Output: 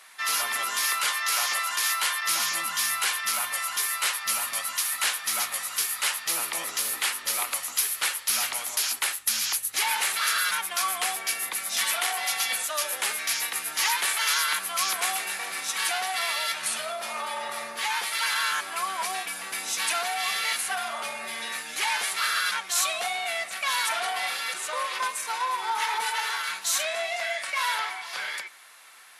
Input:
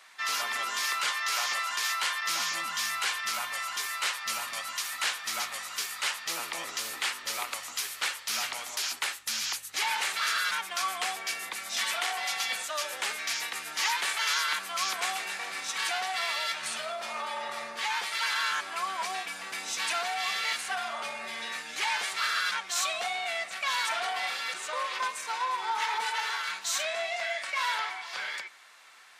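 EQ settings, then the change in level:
parametric band 11,000 Hz +14.5 dB 0.41 octaves
+2.5 dB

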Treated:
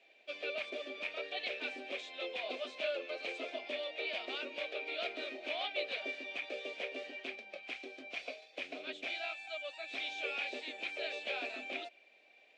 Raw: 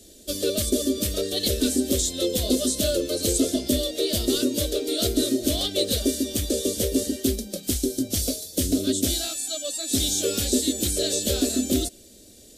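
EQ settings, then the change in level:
high-pass with resonance 830 Hz, resonance Q 4.9
transistor ladder low-pass 2,500 Hz, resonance 85%
+1.5 dB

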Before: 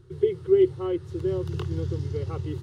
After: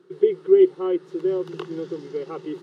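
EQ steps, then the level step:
linear-phase brick-wall high-pass 170 Hz
low-pass filter 2,900 Hz 6 dB per octave
notch filter 980 Hz, Q 26
+4.5 dB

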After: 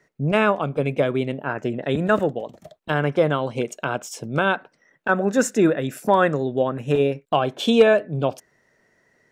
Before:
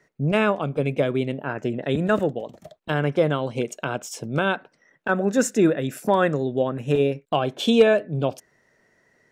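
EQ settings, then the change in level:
dynamic equaliser 1,100 Hz, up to +4 dB, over −34 dBFS, Q 0.77
0.0 dB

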